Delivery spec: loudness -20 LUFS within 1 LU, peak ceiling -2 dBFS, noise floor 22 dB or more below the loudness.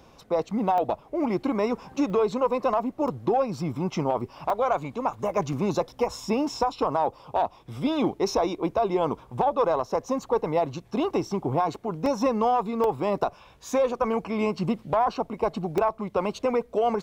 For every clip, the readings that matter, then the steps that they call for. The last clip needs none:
dropouts 8; longest dropout 1.4 ms; loudness -26.5 LUFS; peak -11.0 dBFS; loudness target -20.0 LUFS
-> interpolate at 0.78/2.1/3.08/4.5/5.53/12.06/12.84/15.78, 1.4 ms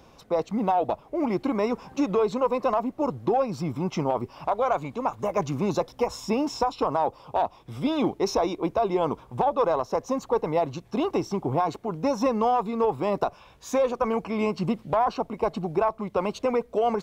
dropouts 0; loudness -26.5 LUFS; peak -11.0 dBFS; loudness target -20.0 LUFS
-> gain +6.5 dB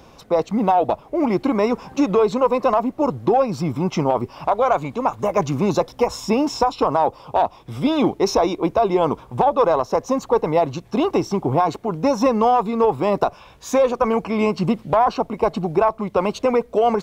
loudness -20.0 LUFS; peak -4.5 dBFS; noise floor -47 dBFS

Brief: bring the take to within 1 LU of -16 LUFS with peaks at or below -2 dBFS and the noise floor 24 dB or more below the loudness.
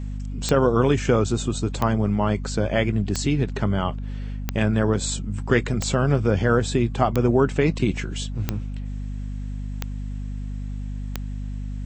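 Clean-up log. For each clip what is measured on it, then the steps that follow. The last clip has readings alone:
clicks 9; hum 50 Hz; harmonics up to 250 Hz; hum level -27 dBFS; loudness -24.0 LUFS; peak -4.0 dBFS; loudness target -16.0 LUFS
-> de-click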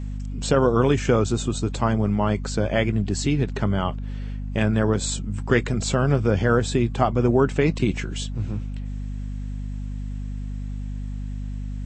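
clicks 0; hum 50 Hz; harmonics up to 250 Hz; hum level -27 dBFS
-> de-hum 50 Hz, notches 5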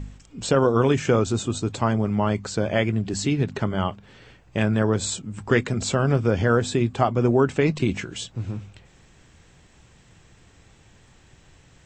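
hum none; loudness -23.0 LUFS; peak -5.0 dBFS; loudness target -16.0 LUFS
-> gain +7 dB; limiter -2 dBFS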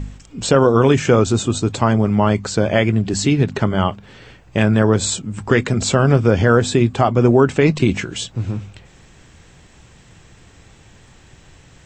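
loudness -16.5 LUFS; peak -2.0 dBFS; noise floor -48 dBFS

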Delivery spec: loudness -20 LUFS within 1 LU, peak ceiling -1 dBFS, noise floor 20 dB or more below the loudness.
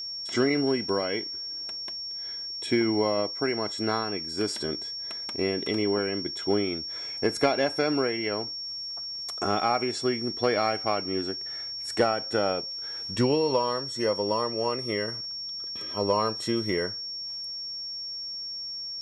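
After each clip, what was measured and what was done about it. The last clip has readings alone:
steady tone 5500 Hz; tone level -33 dBFS; loudness -28.0 LUFS; peak -11.0 dBFS; loudness target -20.0 LUFS
-> notch 5500 Hz, Q 30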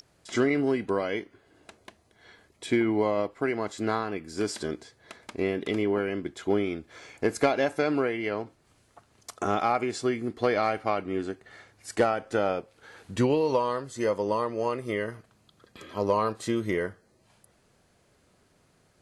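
steady tone none; loudness -28.5 LUFS; peak -11.5 dBFS; loudness target -20.0 LUFS
-> gain +8.5 dB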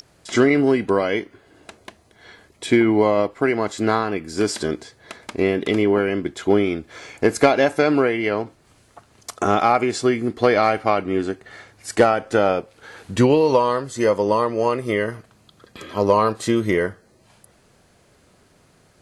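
loudness -20.0 LUFS; peak -3.0 dBFS; noise floor -57 dBFS

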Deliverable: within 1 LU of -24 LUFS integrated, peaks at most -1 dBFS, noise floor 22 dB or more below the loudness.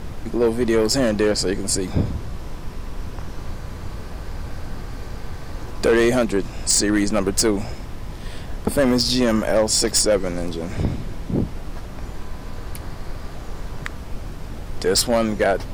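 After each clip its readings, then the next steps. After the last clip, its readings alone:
clipped 0.7%; flat tops at -11.0 dBFS; noise floor -34 dBFS; noise floor target -42 dBFS; loudness -20.0 LUFS; peak -11.0 dBFS; loudness target -24.0 LUFS
-> clip repair -11 dBFS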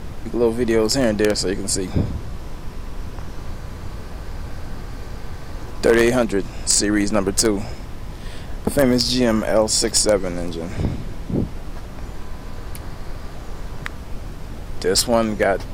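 clipped 0.0%; noise floor -34 dBFS; noise floor target -42 dBFS
-> noise print and reduce 8 dB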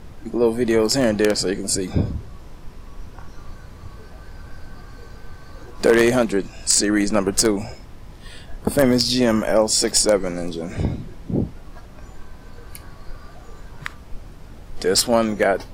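noise floor -41 dBFS; noise floor target -42 dBFS
-> noise print and reduce 6 dB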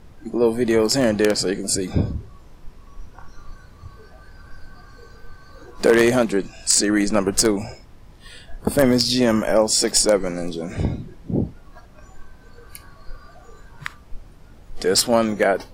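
noise floor -47 dBFS; loudness -19.5 LUFS; peak -1.5 dBFS; loudness target -24.0 LUFS
-> gain -4.5 dB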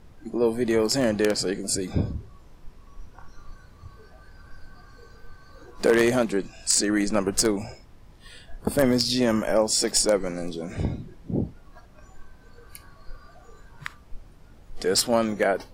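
loudness -24.0 LUFS; peak -6.0 dBFS; noise floor -51 dBFS

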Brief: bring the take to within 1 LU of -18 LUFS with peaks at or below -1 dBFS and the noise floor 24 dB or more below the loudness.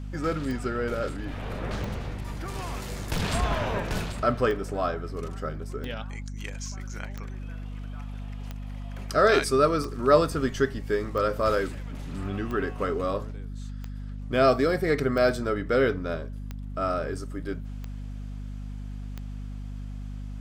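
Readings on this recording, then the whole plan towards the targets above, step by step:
clicks 15; hum 50 Hz; harmonics up to 250 Hz; hum level -33 dBFS; loudness -27.5 LUFS; peak -6.5 dBFS; loudness target -18.0 LUFS
-> de-click; de-hum 50 Hz, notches 5; gain +9.5 dB; limiter -1 dBFS

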